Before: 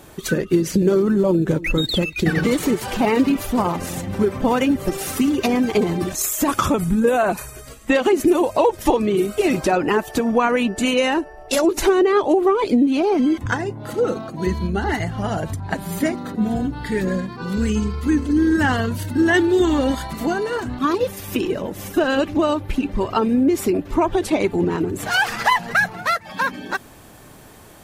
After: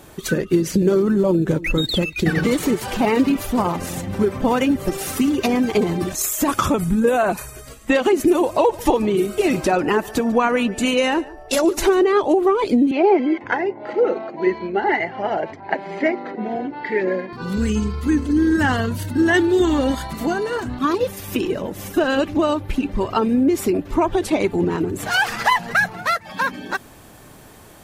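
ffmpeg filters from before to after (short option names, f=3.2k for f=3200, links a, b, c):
-filter_complex "[0:a]asettb=1/sr,asplit=3[a][b][c];[a]atrim=end=8.204[d];[b]atrim=start=8.2:end=12.06,asetpts=PTS-STARTPTS,afade=t=in:d=0.004:c=qsin,afade=t=out:st=3.856:d=0.004:c=qsin,aecho=1:1:145:0.0891,atrim=end_sample=170226[e];[c]atrim=start=12.056[f];[d][e]acrossfade=d=0.004:c1=hsin:c2=qsin[g];[g][f]acrossfade=d=0.004:c1=qsin:c2=hsin,asettb=1/sr,asplit=3[h][i][j];[h]atrim=end=12.914[k];[i]atrim=start=12.91:end=17.33,asetpts=PTS-STARTPTS,afade=t=in:d=0.004:c=qsin,afade=t=out:st=4.416:d=0.004:c=qsin,highpass=340,equalizer=f=370:t=q:w=4:g=8,equalizer=f=590:t=q:w=4:g=5,equalizer=f=840:t=q:w=4:g=6,equalizer=f=1.2k:t=q:w=4:g=-5,equalizer=f=2.1k:t=q:w=4:g=9,equalizer=f=3.6k:t=q:w=4:g=-9,lowpass=f=4.1k:w=0.5412,lowpass=f=4.1k:w=1.3066[l];[j]atrim=start=17.326[m];[k][l]acrossfade=d=0.004:c1=hsin:c2=qsin[n];[n][m]acrossfade=d=0.004:c1=qsin:c2=hsin"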